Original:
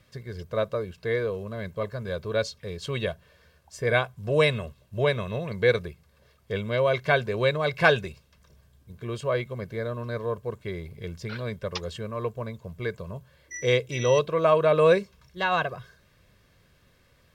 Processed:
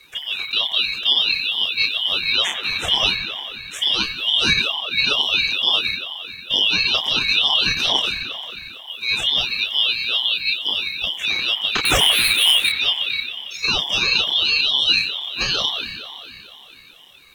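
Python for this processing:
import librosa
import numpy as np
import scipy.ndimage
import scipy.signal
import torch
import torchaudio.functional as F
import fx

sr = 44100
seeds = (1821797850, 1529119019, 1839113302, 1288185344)

p1 = fx.band_shuffle(x, sr, order='3412')
p2 = fx.leveller(p1, sr, passes=5, at=(11.85, 12.69))
p3 = fx.over_compress(p2, sr, threshold_db=-26.0, ratio=-0.5)
p4 = p2 + F.gain(torch.from_numpy(p3), 2.0).numpy()
p5 = fx.fixed_phaser(p4, sr, hz=920.0, stages=8)
p6 = fx.doubler(p5, sr, ms=29.0, db=-3)
p7 = p6 + fx.echo_wet_bandpass(p6, sr, ms=90, feedback_pct=81, hz=1500.0, wet_db=-7.0, dry=0)
p8 = fx.ring_lfo(p7, sr, carrier_hz=450.0, swing_pct=85, hz=2.2)
y = F.gain(torch.from_numpy(p8), 7.5).numpy()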